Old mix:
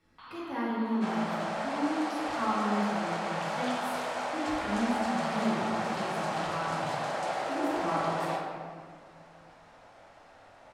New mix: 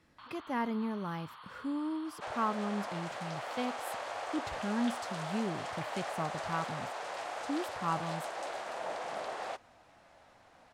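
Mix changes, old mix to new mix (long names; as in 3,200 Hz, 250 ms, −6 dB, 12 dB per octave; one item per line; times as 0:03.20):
speech +8.5 dB
second sound: entry +1.20 s
reverb: off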